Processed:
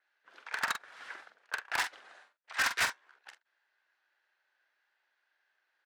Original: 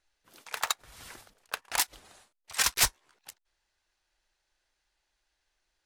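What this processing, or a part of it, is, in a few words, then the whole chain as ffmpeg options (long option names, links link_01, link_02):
megaphone: -filter_complex "[0:a]highpass=490,lowpass=3000,equalizer=frequency=1600:width_type=o:width=0.57:gain=9,asoftclip=type=hard:threshold=-24.5dB,asplit=2[link_01][link_02];[link_02]adelay=45,volume=-8dB[link_03];[link_01][link_03]amix=inputs=2:normalize=0,adynamicequalizer=threshold=0.00316:dfrequency=6500:dqfactor=0.7:tfrequency=6500:tqfactor=0.7:attack=5:release=100:ratio=0.375:range=3:mode=boostabove:tftype=highshelf"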